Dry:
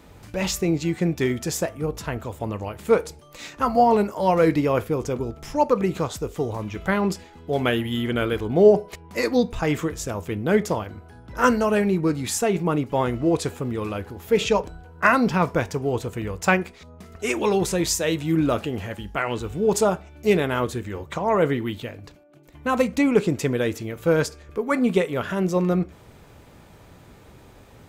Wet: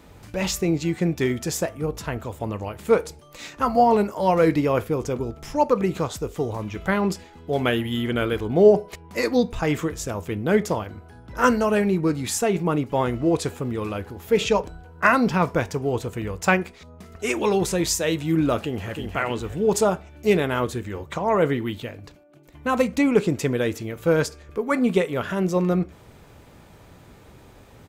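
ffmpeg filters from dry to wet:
ffmpeg -i in.wav -filter_complex "[0:a]asplit=2[link_01][link_02];[link_02]afade=type=in:start_time=18.56:duration=0.01,afade=type=out:start_time=19:duration=0.01,aecho=0:1:310|620|930|1240|1550:0.530884|0.212354|0.0849415|0.0339766|0.0135906[link_03];[link_01][link_03]amix=inputs=2:normalize=0" out.wav

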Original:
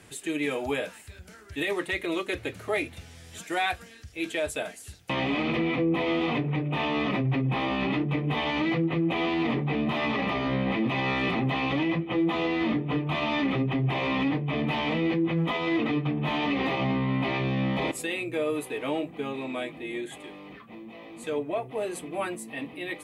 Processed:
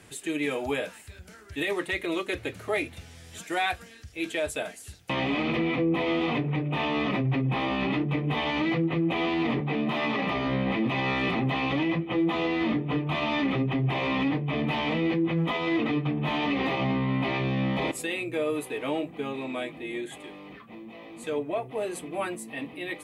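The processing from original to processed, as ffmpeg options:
ffmpeg -i in.wav -filter_complex "[0:a]asettb=1/sr,asplit=3[link_01][link_02][link_03];[link_01]atrim=end=9.604[link_04];[link_02]atrim=start=9.6:end=10.28,asetpts=PTS-STARTPTS,afade=type=in:duration=0.004:curve=qsin,afade=type=out:start_time=0.676:duration=0.004:curve=qsin,highpass=130[link_05];[link_03]atrim=start=10.276[link_06];[link_04][link_05]acrossfade=duration=0.004:curve1=hsin:curve2=qsin[link_07];[link_07][link_06]acrossfade=duration=0.004:curve1=qsin:curve2=hsin" out.wav

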